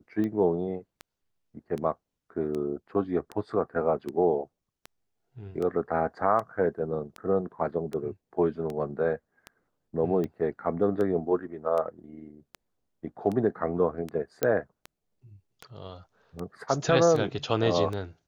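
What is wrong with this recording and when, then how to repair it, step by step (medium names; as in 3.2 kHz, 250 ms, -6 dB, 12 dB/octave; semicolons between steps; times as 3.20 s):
tick 78 rpm -22 dBFS
14.43 s: pop -11 dBFS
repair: de-click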